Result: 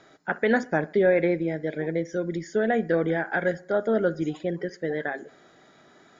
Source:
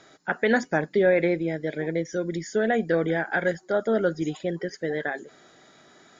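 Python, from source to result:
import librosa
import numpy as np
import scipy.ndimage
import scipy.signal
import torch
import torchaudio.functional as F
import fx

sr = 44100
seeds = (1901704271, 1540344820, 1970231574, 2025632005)

y = fx.high_shelf(x, sr, hz=3900.0, db=-9.0)
y = fx.echo_bbd(y, sr, ms=63, stages=1024, feedback_pct=44, wet_db=-20.5)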